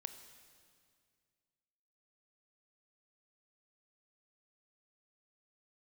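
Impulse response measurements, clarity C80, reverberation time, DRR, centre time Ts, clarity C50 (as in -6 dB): 10.5 dB, 2.1 s, 8.5 dB, 21 ms, 9.5 dB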